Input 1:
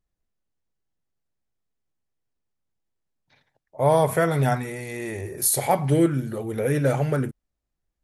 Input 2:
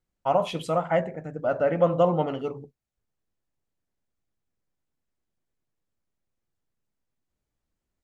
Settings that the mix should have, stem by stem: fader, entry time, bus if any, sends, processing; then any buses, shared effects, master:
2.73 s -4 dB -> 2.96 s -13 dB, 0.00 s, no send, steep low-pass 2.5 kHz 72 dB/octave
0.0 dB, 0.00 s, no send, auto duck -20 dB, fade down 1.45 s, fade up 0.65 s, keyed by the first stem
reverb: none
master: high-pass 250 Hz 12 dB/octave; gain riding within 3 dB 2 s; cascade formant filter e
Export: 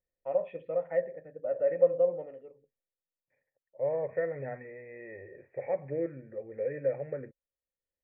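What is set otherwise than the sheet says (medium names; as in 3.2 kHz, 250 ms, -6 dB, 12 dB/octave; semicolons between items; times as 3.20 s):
stem 1 -4.0 dB -> +6.0 dB; master: missing high-pass 250 Hz 12 dB/octave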